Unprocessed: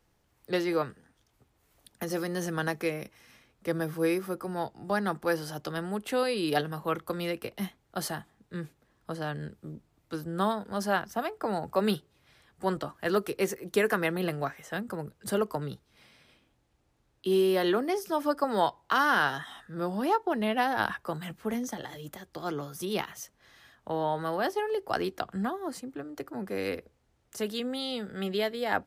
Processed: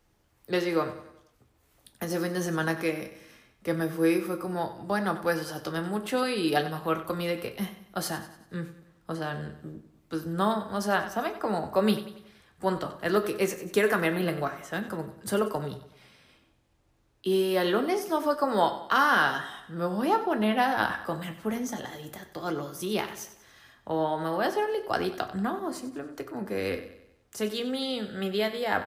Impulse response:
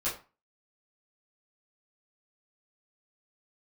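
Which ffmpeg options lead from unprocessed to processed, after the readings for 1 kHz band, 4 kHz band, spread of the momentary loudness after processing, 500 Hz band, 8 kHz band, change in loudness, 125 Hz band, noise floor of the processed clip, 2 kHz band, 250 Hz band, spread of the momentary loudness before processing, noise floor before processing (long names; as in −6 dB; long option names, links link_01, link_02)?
+2.0 dB, +2.0 dB, 13 LU, +1.5 dB, +2.0 dB, +2.0 dB, +2.0 dB, −66 dBFS, +2.0 dB, +2.5 dB, 13 LU, −71 dBFS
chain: -filter_complex "[0:a]aecho=1:1:94|188|282|376|470:0.211|0.101|0.0487|0.0234|0.0112,asplit=2[link_01][link_02];[1:a]atrim=start_sample=2205[link_03];[link_02][link_03]afir=irnorm=-1:irlink=0,volume=-11.5dB[link_04];[link_01][link_04]amix=inputs=2:normalize=0"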